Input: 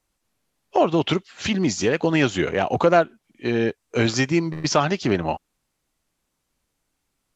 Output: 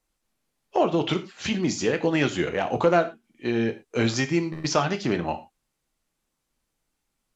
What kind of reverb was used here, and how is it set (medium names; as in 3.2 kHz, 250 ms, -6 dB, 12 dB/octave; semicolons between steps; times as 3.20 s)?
gated-style reverb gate 140 ms falling, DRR 8 dB; trim -4 dB